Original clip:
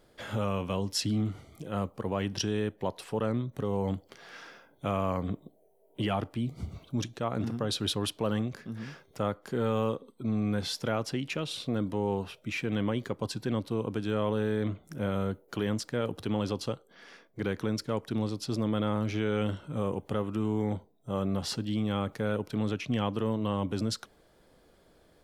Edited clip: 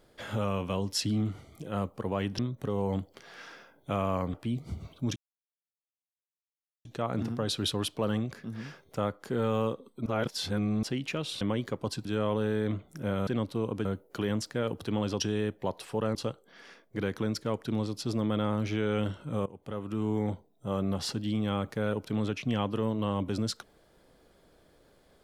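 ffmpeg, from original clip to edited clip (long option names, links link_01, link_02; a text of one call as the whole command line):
ffmpeg -i in.wav -filter_complex "[0:a]asplit=13[link_01][link_02][link_03][link_04][link_05][link_06][link_07][link_08][link_09][link_10][link_11][link_12][link_13];[link_01]atrim=end=2.392[link_14];[link_02]atrim=start=3.338:end=5.292[link_15];[link_03]atrim=start=6.248:end=7.07,asetpts=PTS-STARTPTS,afade=type=out:start_time=0.818:duration=0.004:curve=hsin,apad=pad_dur=1.69[link_16];[link_04]atrim=start=7.07:end=10.282,asetpts=PTS-STARTPTS,afade=type=in:duration=0.004:curve=hsin[link_17];[link_05]atrim=start=10.278:end=11.052,asetpts=PTS-STARTPTS,areverse[link_18];[link_06]atrim=start=11.048:end=11.632[link_19];[link_07]atrim=start=12.788:end=13.432[link_20];[link_08]atrim=start=14.008:end=15.232[link_21];[link_09]atrim=start=13.428:end=14.012[link_22];[link_10]atrim=start=15.228:end=16.582[link_23];[link_11]atrim=start=2.388:end=3.342[link_24];[link_12]atrim=start=16.578:end=19.89,asetpts=PTS-STARTPTS,afade=type=out:start_time=3.308:duration=0.004:curve=hsin:silence=0.1[link_25];[link_13]atrim=start=19.89,asetpts=PTS-STARTPTS,afade=type=in:duration=0.63:silence=0.1[link_26];[link_14][link_15]acrossfade=duration=0.004:curve1=hsin:curve2=hsin[link_27];[link_16][link_17]concat=n=2:v=0:a=1[link_28];[link_27][link_28]acrossfade=duration=0.004:curve1=hsin:curve2=hsin[link_29];[link_29][link_18]acrossfade=duration=0.004:curve1=hsin:curve2=hsin[link_30];[link_30][link_19]acrossfade=duration=0.004:curve1=hsin:curve2=hsin[link_31];[link_31][link_20]acrossfade=duration=0.004:curve1=hsin:curve2=hsin[link_32];[link_32][link_21]acrossfade=duration=0.004:curve1=hsin:curve2=hsin[link_33];[link_33][link_22]acrossfade=duration=0.004:curve1=hsin:curve2=hsin[link_34];[link_34][link_23]acrossfade=duration=0.004:curve1=hsin:curve2=hsin[link_35];[link_35][link_24]acrossfade=duration=0.004:curve1=hsin:curve2=hsin[link_36];[link_25][link_26]concat=n=2:v=0:a=1[link_37];[link_36][link_37]acrossfade=duration=0.004:curve1=hsin:curve2=hsin" out.wav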